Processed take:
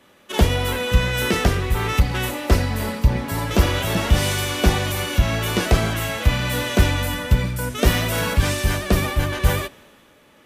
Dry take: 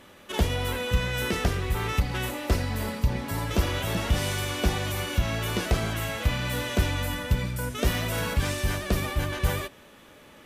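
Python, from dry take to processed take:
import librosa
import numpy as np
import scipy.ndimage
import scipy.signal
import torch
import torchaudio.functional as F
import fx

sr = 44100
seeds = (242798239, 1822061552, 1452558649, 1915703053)

y = fx.band_widen(x, sr, depth_pct=40)
y = F.gain(torch.from_numpy(y), 7.0).numpy()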